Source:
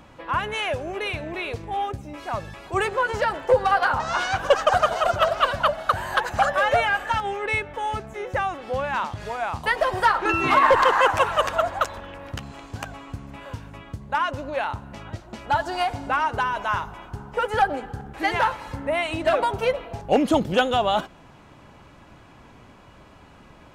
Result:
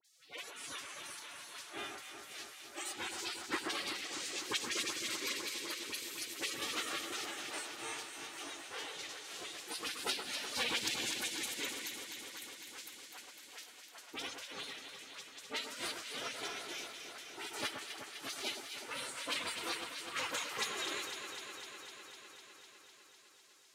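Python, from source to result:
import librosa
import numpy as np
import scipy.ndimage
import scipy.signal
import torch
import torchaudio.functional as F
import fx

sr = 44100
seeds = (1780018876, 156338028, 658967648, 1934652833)

y = fx.spec_gate(x, sr, threshold_db=-30, keep='weak')
y = scipy.signal.sosfilt(scipy.signal.butter(4, 65.0, 'highpass', fs=sr, output='sos'), y)
y = fx.low_shelf_res(y, sr, hz=190.0, db=-9.0, q=1.5)
y = fx.dispersion(y, sr, late='highs', ms=49.0, hz=1500.0)
y = fx.vibrato(y, sr, rate_hz=1.2, depth_cents=7.7)
y = fx.pitch_keep_formants(y, sr, semitones=3.5)
y = fx.echo_alternate(y, sr, ms=126, hz=1800.0, feedback_pct=87, wet_db=-6.0)
y = F.gain(torch.from_numpy(y), 3.0).numpy()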